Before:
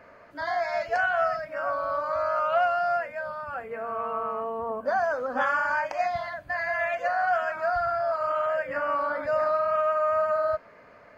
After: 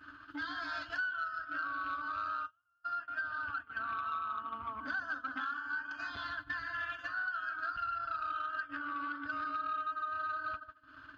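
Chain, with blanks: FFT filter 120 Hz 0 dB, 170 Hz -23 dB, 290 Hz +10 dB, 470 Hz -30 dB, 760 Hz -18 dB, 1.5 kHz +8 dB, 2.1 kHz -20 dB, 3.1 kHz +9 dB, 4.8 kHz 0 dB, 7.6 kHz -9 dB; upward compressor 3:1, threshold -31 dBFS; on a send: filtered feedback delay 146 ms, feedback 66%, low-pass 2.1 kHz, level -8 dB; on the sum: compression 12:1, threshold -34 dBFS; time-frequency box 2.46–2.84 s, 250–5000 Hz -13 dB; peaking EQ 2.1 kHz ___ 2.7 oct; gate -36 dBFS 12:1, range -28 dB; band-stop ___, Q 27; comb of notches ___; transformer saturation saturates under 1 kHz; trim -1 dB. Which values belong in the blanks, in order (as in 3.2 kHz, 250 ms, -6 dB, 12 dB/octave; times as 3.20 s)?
+3 dB, 5.5 kHz, 240 Hz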